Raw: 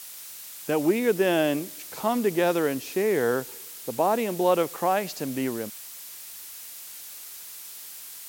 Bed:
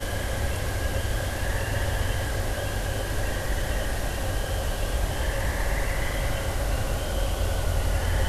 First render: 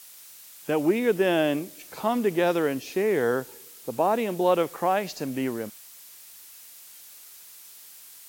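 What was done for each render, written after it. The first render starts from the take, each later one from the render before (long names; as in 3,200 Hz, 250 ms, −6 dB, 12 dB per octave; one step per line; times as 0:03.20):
noise reduction from a noise print 6 dB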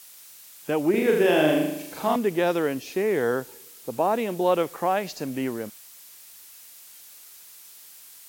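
0:00.90–0:02.16: flutter between parallel walls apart 6.7 metres, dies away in 0.81 s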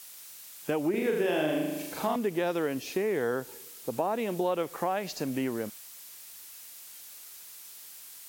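downward compressor 3 to 1, threshold −27 dBFS, peak gain reduction 9 dB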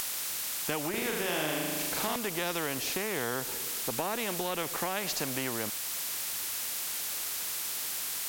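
upward compression, threshold −39 dBFS
every bin compressed towards the loudest bin 2 to 1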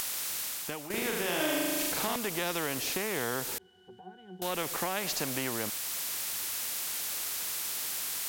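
0:00.41–0:00.90: fade out, to −11.5 dB
0:01.40–0:01.92: comb filter 3.2 ms
0:03.58–0:04.42: resonances in every octave F#, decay 0.25 s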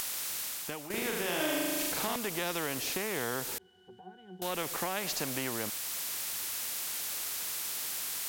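level −1.5 dB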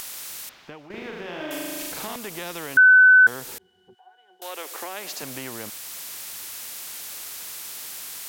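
0:00.49–0:01.51: high-frequency loss of the air 240 metres
0:02.77–0:03.27: beep over 1,510 Hz −9 dBFS
0:03.93–0:05.21: high-pass filter 740 Hz → 200 Hz 24 dB per octave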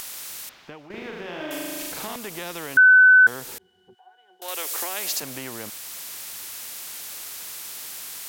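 0:04.48–0:05.20: high-shelf EQ 3,100 Hz +10 dB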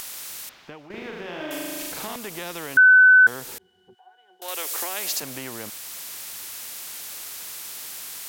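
no processing that can be heard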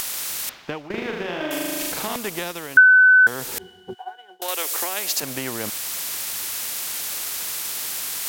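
transient designer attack +5 dB, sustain −5 dB
reversed playback
upward compression, threshold −19 dBFS
reversed playback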